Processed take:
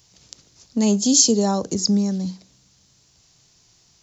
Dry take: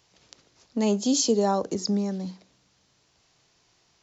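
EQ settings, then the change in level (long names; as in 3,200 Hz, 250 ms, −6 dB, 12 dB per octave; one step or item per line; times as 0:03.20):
bass and treble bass +10 dB, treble +13 dB
0.0 dB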